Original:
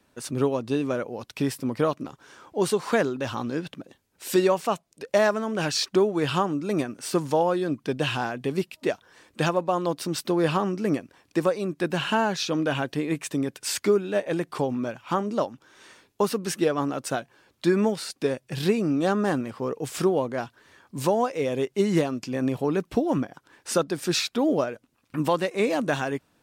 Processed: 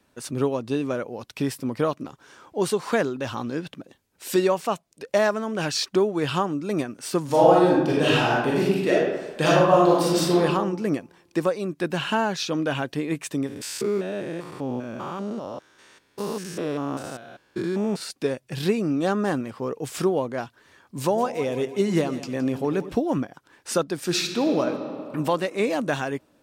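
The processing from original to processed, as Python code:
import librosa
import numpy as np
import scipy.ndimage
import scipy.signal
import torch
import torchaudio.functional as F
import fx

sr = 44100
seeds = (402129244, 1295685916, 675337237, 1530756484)

y = fx.reverb_throw(x, sr, start_s=7.24, length_s=3.14, rt60_s=1.1, drr_db=-6.5)
y = fx.spec_steps(y, sr, hold_ms=200, at=(13.46, 18.0), fade=0.02)
y = fx.echo_split(y, sr, split_hz=640.0, low_ms=95, high_ms=167, feedback_pct=52, wet_db=-13.0, at=(21.01, 22.93))
y = fx.reverb_throw(y, sr, start_s=24.03, length_s=0.62, rt60_s=2.7, drr_db=5.5)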